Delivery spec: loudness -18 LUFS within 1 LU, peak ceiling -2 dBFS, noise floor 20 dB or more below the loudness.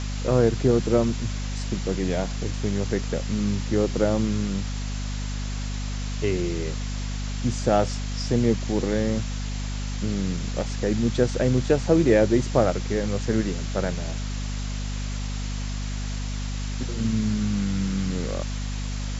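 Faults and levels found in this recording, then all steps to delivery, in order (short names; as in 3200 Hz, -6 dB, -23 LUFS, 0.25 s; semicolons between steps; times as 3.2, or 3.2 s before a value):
hum 50 Hz; harmonics up to 250 Hz; hum level -27 dBFS; noise floor -29 dBFS; noise floor target -46 dBFS; loudness -25.5 LUFS; peak -5.0 dBFS; loudness target -18.0 LUFS
-> de-hum 50 Hz, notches 5; denoiser 17 dB, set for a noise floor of -29 dBFS; gain +7.5 dB; limiter -2 dBFS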